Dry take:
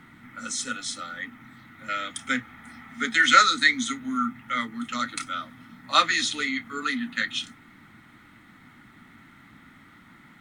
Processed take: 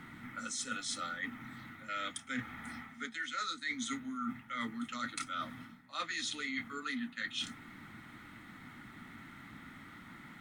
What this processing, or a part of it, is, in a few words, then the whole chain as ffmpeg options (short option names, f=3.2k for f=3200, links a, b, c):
compression on the reversed sound: -af "areverse,acompressor=threshold=-35dB:ratio=20,areverse"